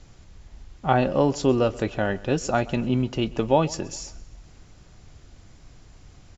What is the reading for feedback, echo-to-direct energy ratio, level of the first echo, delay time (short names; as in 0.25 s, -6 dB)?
49%, -20.0 dB, -21.0 dB, 0.132 s